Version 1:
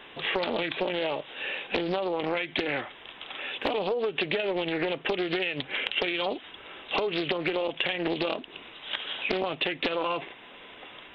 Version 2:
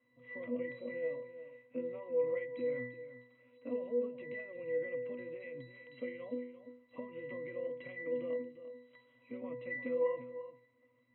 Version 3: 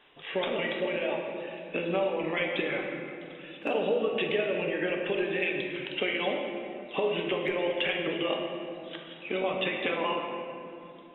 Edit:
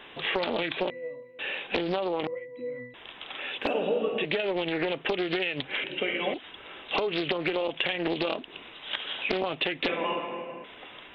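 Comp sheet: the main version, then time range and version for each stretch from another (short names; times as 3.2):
1
0.9–1.39 from 2
2.27–2.94 from 2
3.67–4.25 from 3
5.84–6.34 from 3
9.88–10.64 from 3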